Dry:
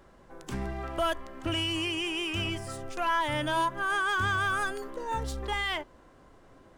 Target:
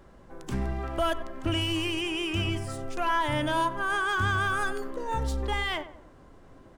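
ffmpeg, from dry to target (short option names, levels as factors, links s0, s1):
-filter_complex "[0:a]asettb=1/sr,asplit=3[s0][s1][s2];[s0]atrim=end=1.614[s3];[s1]atrim=start=1.61:end=2.01,asetpts=PTS-STARTPTS,afade=t=in:d=0.004:c=qsin,afade=t=out:st=0.396:d=0.004:c=qsin,aeval=exprs='0.0891*(cos(1*acos(clip(val(0)/0.0891,-1,1)))-cos(1*PI/2))+0.00398*(cos(8*acos(clip(val(0)/0.0891,-1,1)))-cos(8*PI/2))':c=same[s4];[s2]atrim=start=2.006[s5];[s3][s4]acrossfade=d=0.004:c1=hsin:c2=qsin[s6];[s6][s5]acrossfade=d=0.004:c1=qsin:c2=hsin,lowshelf=f=360:g=5.5,asplit=2[s7][s8];[s8]adelay=94,lowpass=f=1600:p=1,volume=0.251,asplit=2[s9][s10];[s10]adelay=94,lowpass=f=1600:p=1,volume=0.46,asplit=2[s11][s12];[s12]adelay=94,lowpass=f=1600:p=1,volume=0.46,asplit=2[s13][s14];[s14]adelay=94,lowpass=f=1600:p=1,volume=0.46,asplit=2[s15][s16];[s16]adelay=94,lowpass=f=1600:p=1,volume=0.46[s17];[s9][s11][s13][s15][s17]amix=inputs=5:normalize=0[s18];[s7][s18]amix=inputs=2:normalize=0"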